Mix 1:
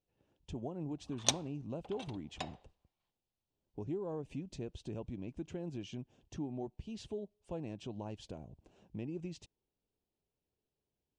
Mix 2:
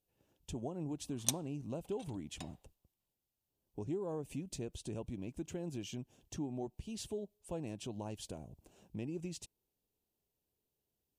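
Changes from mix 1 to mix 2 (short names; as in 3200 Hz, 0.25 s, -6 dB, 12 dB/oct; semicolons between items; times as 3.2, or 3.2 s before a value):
background -11.5 dB; master: remove air absorption 130 m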